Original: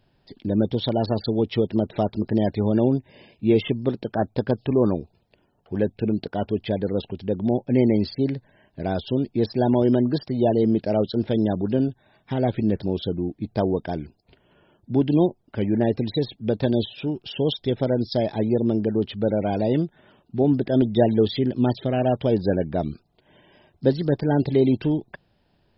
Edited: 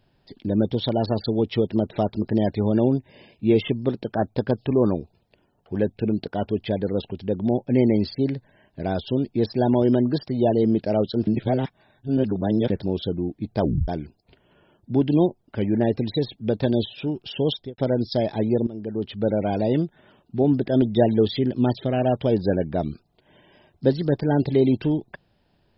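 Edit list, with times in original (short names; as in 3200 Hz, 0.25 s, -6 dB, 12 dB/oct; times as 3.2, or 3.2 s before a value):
11.27–12.7 reverse
13.61 tape stop 0.27 s
17.53–17.78 studio fade out
18.67–19.26 fade in, from -18 dB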